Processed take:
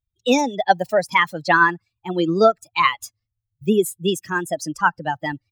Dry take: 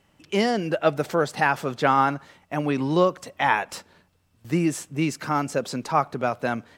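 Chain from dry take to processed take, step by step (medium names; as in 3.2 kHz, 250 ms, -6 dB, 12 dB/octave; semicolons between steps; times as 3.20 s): expander on every frequency bin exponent 2; wow and flutter 24 cents; tape speed +23%; trim +8 dB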